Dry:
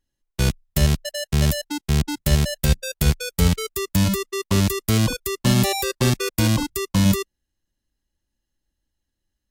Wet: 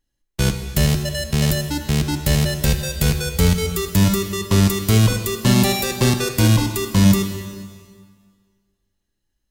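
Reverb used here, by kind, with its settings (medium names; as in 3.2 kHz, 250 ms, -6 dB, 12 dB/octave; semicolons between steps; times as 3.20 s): plate-style reverb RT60 1.8 s, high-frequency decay 0.95×, DRR 5.5 dB; trim +2 dB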